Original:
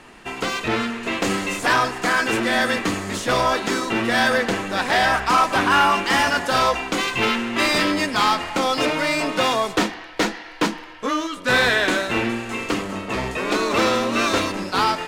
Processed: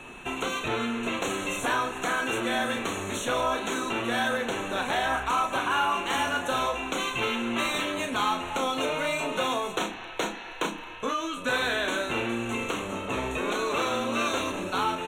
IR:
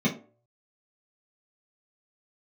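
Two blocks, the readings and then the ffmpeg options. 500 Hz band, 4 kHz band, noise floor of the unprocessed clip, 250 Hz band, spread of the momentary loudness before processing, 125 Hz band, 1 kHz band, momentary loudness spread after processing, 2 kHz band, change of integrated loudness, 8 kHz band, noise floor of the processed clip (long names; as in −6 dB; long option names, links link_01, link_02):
−7.0 dB, −7.5 dB, −38 dBFS, −8.0 dB, 8 LU, −8.5 dB, −7.5 dB, 5 LU, −8.5 dB, −7.5 dB, −6.0 dB, −40 dBFS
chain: -filter_complex "[0:a]equalizer=frequency=1900:width=7.4:gain=-9.5,acrossover=split=380[link_01][link_02];[link_01]alimiter=level_in=1.5dB:limit=-24dB:level=0:latency=1,volume=-1.5dB[link_03];[link_03][link_02]amix=inputs=2:normalize=0,acompressor=threshold=-31dB:ratio=2,aeval=exprs='val(0)+0.00562*sin(2*PI*2600*n/s)':channel_layout=same,asuperstop=centerf=4900:order=8:qfactor=3.1,asplit=2[link_04][link_05];[link_05]adelay=34,volume=-7dB[link_06];[link_04][link_06]amix=inputs=2:normalize=0,asplit=2[link_07][link_08];[1:a]atrim=start_sample=2205,asetrate=57330,aresample=44100[link_09];[link_08][link_09]afir=irnorm=-1:irlink=0,volume=-31.5dB[link_10];[link_07][link_10]amix=inputs=2:normalize=0"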